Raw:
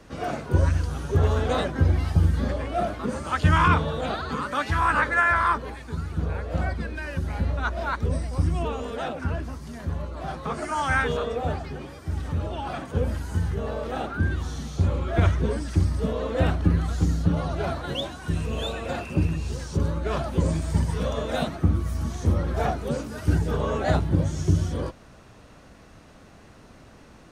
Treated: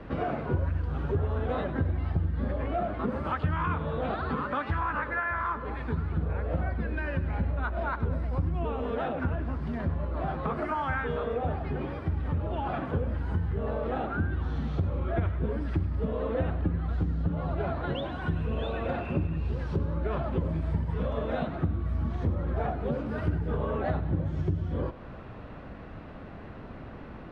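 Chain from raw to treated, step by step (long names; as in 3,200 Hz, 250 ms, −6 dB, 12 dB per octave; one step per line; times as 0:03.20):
downward compressor 5 to 1, threshold −34 dBFS, peak gain reduction 18 dB
high-frequency loss of the air 460 metres
on a send: feedback echo with a high-pass in the loop 100 ms, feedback 68%, level −14.5 dB
on the sum: level +7.5 dB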